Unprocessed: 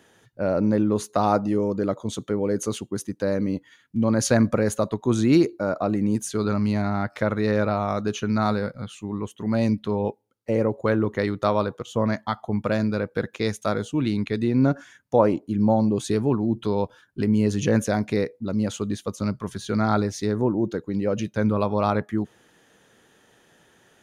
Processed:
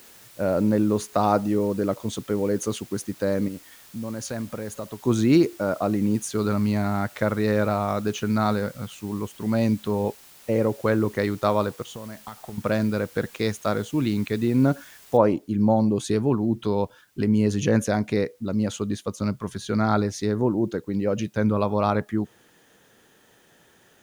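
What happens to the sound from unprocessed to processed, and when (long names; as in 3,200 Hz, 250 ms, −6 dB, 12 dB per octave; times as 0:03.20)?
0:03.48–0:05.05: downward compressor 2 to 1, threshold −37 dBFS
0:11.88–0:12.58: downward compressor 10 to 1, threshold −33 dBFS
0:15.17: noise floor change −50 dB −66 dB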